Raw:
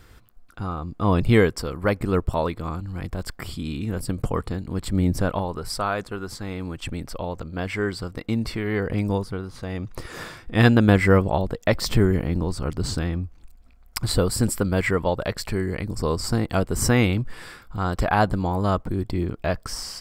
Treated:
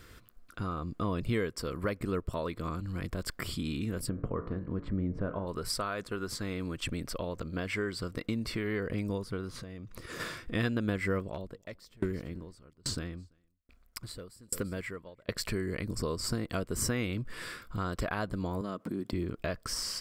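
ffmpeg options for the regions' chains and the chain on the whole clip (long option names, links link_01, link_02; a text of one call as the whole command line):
ffmpeg -i in.wav -filter_complex "[0:a]asettb=1/sr,asplit=3[link_01][link_02][link_03];[link_01]atrim=end=4.094[link_04];[link_02]atrim=start=4.09:end=5.47,asetpts=PTS-STARTPTS,afade=type=in:duration=0.004:curve=qsin,afade=type=out:start_time=1.376:duration=0.004:curve=qsin,lowpass=1400,bandreject=frequency=56.31:width_type=h:width=4,bandreject=frequency=112.62:width_type=h:width=4,bandreject=frequency=168.93:width_type=h:width=4,bandreject=frequency=225.24:width_type=h:width=4,bandreject=frequency=281.55:width_type=h:width=4,bandreject=frequency=337.86:width_type=h:width=4,bandreject=frequency=394.17:width_type=h:width=4,bandreject=frequency=450.48:width_type=h:width=4,bandreject=frequency=506.79:width_type=h:width=4,bandreject=frequency=563.1:width_type=h:width=4,bandreject=frequency=619.41:width_type=h:width=4,bandreject=frequency=675.72:width_type=h:width=4,bandreject=frequency=732.03:width_type=h:width=4,bandreject=frequency=788.34:width_type=h:width=4,bandreject=frequency=844.65:width_type=h:width=4,bandreject=frequency=900.96:width_type=h:width=4,bandreject=frequency=957.27:width_type=h:width=4,bandreject=frequency=1013.58:width_type=h:width=4,bandreject=frequency=1069.89:width_type=h:width=4,bandreject=frequency=1126.2:width_type=h:width=4,bandreject=frequency=1182.51:width_type=h:width=4,bandreject=frequency=1238.82:width_type=h:width=4,bandreject=frequency=1295.13:width_type=h:width=4,bandreject=frequency=1351.44:width_type=h:width=4,bandreject=frequency=1407.75:width_type=h:width=4,bandreject=frequency=1464.06:width_type=h:width=4,bandreject=frequency=1520.37:width_type=h:width=4,bandreject=frequency=1576.68:width_type=h:width=4,bandreject=frequency=1632.99:width_type=h:width=4,bandreject=frequency=1689.3:width_type=h:width=4,bandreject=frequency=1745.61:width_type=h:width=4,bandreject=frequency=1801.92:width_type=h:width=4,bandreject=frequency=1858.23:width_type=h:width=4,bandreject=frequency=1914.54:width_type=h:width=4,bandreject=frequency=1970.85:width_type=h:width=4,bandreject=frequency=2027.16:width_type=h:width=4,bandreject=frequency=2083.47:width_type=h:width=4,bandreject=frequency=2139.78:width_type=h:width=4,bandreject=frequency=2196.09:width_type=h:width=4[link_05];[link_03]atrim=start=5.466[link_06];[link_04][link_05]acrossfade=duration=0.004:curve1=hsin:curve2=qsin[link_07];[link_07][link_06]acrossfade=duration=0.004:curve1=qsin:curve2=hsin,asettb=1/sr,asplit=3[link_08][link_09][link_10];[link_08]atrim=end=9.614[link_11];[link_09]atrim=start=9.61:end=10.2,asetpts=PTS-STARTPTS,afade=type=in:duration=0.004:curve=qsin,afade=type=out:start_time=0.586:duration=0.004:curve=qsin,equalizer=frequency=120:width=0.38:gain=4,acompressor=threshold=-36dB:ratio=12:attack=3.2:release=140:knee=1:detection=peak[link_12];[link_10]atrim=start=10.196[link_13];[link_11][link_12]acrossfade=duration=0.004:curve1=hsin:curve2=qsin[link_14];[link_14][link_13]acrossfade=duration=0.004:curve1=qsin:curve2=hsin,asettb=1/sr,asplit=3[link_15][link_16][link_17];[link_15]atrim=end=11.194[link_18];[link_16]atrim=start=11.19:end=15.29,asetpts=PTS-STARTPTS,afade=type=in:duration=0.004:curve=qsin,afade=type=out:start_time=4.096:duration=0.004:curve=qsin,asoftclip=type=hard:threshold=-11.5dB,aecho=1:1:338:0.0891,atrim=end_sample=180810,aeval=exprs='val(0)*pow(10,-36*if(lt(mod(1.2*n/s,1),2*abs(1.2)/1000),1-mod(1.2*n/s,1)/(2*abs(1.2)/1000),(mod(1.2*n/s,1)-2*abs(1.2)/1000)/(1-2*abs(1.2)/1000))/20)':channel_layout=same[link_19];[link_17]atrim=start=15.286[link_20];[link_18][link_19]acrossfade=duration=0.004:curve1=hsin:curve2=qsin[link_21];[link_21][link_20]acrossfade=duration=0.004:curve1=qsin:curve2=hsin,asettb=1/sr,asplit=3[link_22][link_23][link_24];[link_22]atrim=end=18.614[link_25];[link_23]atrim=start=18.61:end=19.13,asetpts=PTS-STARTPTS,afade=type=in:duration=0.004:curve=qsin,afade=type=out:start_time=0.516:duration=0.004:curve=qsin,acompressor=threshold=-27dB:ratio=4:attack=3.2:release=140:knee=1:detection=peak,highpass=frequency=210:width_type=q:width=1.6[link_26];[link_24]atrim=start=19.126[link_27];[link_25][link_26]acrossfade=duration=0.004:curve1=hsin:curve2=qsin[link_28];[link_28][link_27]acrossfade=duration=0.004:curve1=qsin:curve2=hsin,lowshelf=frequency=130:gain=-6.5,acompressor=threshold=-31dB:ratio=3,equalizer=frequency=810:width_type=o:width=0.31:gain=-12.5" out.wav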